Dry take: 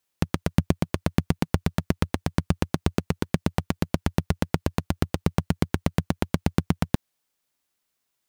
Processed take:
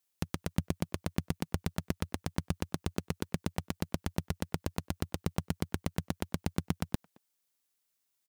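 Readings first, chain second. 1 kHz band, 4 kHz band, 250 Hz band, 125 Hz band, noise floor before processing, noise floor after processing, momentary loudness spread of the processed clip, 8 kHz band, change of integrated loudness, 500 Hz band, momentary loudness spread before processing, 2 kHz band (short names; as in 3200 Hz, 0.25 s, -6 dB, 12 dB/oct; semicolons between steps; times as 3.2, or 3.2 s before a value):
-10.0 dB, -7.0 dB, -10.5 dB, -10.5 dB, -79 dBFS, -80 dBFS, 3 LU, -4.0 dB, -10.0 dB, -10.5 dB, 3 LU, -9.0 dB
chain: high shelf 4000 Hz +8 dB; limiter -4.5 dBFS, peak gain reduction 3.5 dB; speakerphone echo 0.22 s, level -23 dB; gain -8.5 dB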